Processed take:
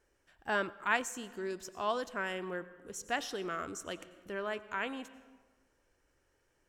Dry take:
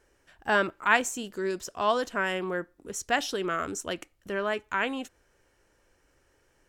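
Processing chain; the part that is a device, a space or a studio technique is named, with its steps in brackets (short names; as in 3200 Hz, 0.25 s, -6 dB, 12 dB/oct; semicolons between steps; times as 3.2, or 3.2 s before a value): compressed reverb return (on a send at -11.5 dB: reverb RT60 1.2 s, pre-delay 83 ms + compressor, threshold -30 dBFS, peak gain reduction 12 dB); on the sum: gain -8 dB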